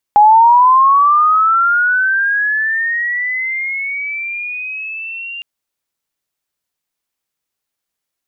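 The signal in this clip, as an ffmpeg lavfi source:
ffmpeg -f lavfi -i "aevalsrc='pow(10,(-3.5-20.5*t/5.26)/20)*sin(2*PI*(820*t+1980*t*t/(2*5.26)))':duration=5.26:sample_rate=44100" out.wav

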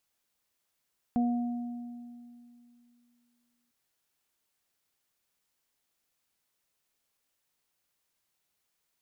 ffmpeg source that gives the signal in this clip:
ffmpeg -f lavfi -i "aevalsrc='0.0708*pow(10,-3*t/2.71)*sin(2*PI*240*t)+0.00794*pow(10,-3*t/0.62)*sin(2*PI*480*t)+0.0237*pow(10,-3*t/1.79)*sin(2*PI*720*t)':duration=2.55:sample_rate=44100" out.wav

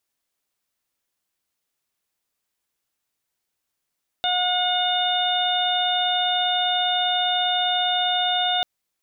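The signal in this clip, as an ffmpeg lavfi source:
ffmpeg -f lavfi -i "aevalsrc='0.0708*sin(2*PI*723*t)+0.0299*sin(2*PI*1446*t)+0.0141*sin(2*PI*2169*t)+0.0398*sin(2*PI*2892*t)+0.075*sin(2*PI*3615*t)':duration=4.39:sample_rate=44100" out.wav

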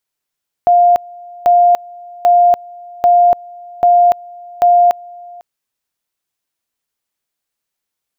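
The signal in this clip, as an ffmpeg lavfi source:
ffmpeg -f lavfi -i "aevalsrc='pow(10,(-5.5-25*gte(mod(t,0.79),0.29))/20)*sin(2*PI*703*t)':duration=4.74:sample_rate=44100" out.wav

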